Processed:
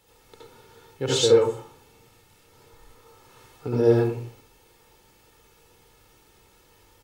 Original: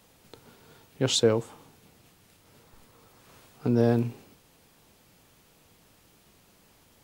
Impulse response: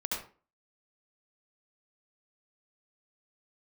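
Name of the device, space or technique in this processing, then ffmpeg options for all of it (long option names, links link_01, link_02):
microphone above a desk: -filter_complex "[0:a]aecho=1:1:2.3:0.59[link_01];[1:a]atrim=start_sample=2205[link_02];[link_01][link_02]afir=irnorm=-1:irlink=0,volume=-2.5dB"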